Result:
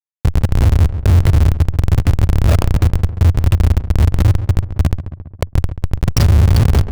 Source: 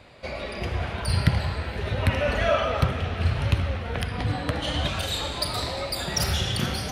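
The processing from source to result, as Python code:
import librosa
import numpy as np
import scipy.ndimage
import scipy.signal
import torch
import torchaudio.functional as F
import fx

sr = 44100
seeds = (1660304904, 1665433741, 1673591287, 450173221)

p1 = 10.0 ** (-20.0 / 20.0) * np.tanh(x / 10.0 ** (-20.0 / 20.0))
p2 = x + (p1 * librosa.db_to_amplitude(-5.0))
p3 = fx.hum_notches(p2, sr, base_hz=60, count=8)
p4 = fx.rider(p3, sr, range_db=4, speed_s=0.5)
p5 = fx.dynamic_eq(p4, sr, hz=4600.0, q=2.2, threshold_db=-43.0, ratio=4.0, max_db=7)
p6 = fx.spec_box(p5, sr, start_s=4.23, length_s=1.78, low_hz=1400.0, high_hz=6700.0, gain_db=-17)
p7 = fx.echo_feedback(p6, sr, ms=899, feedback_pct=29, wet_db=-19.0)
p8 = fx.schmitt(p7, sr, flips_db=-16.5)
p9 = fx.peak_eq(p8, sr, hz=88.0, db=13.0, octaves=1.3)
p10 = fx.echo_filtered(p9, sr, ms=136, feedback_pct=36, hz=1800.0, wet_db=-21.5)
p11 = fx.env_flatten(p10, sr, amount_pct=50)
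y = p11 * librosa.db_to_amplitude(4.5)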